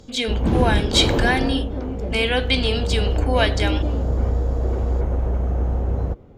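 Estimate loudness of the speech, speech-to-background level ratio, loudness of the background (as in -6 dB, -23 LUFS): -22.0 LUFS, 1.5 dB, -23.5 LUFS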